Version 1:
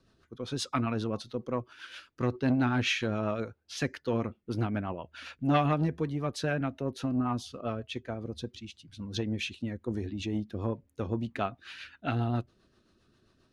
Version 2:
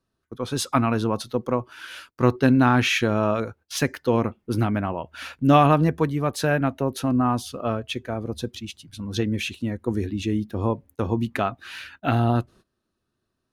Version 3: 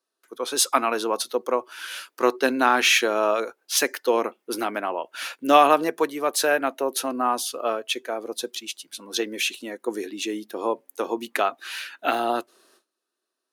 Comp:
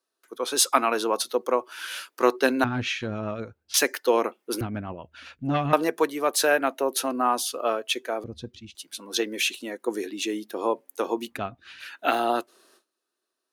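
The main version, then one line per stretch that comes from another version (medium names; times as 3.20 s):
3
2.64–3.74 s: from 1
4.61–5.73 s: from 1
8.24–8.75 s: from 1
11.34–11.84 s: from 1, crossfade 0.10 s
not used: 2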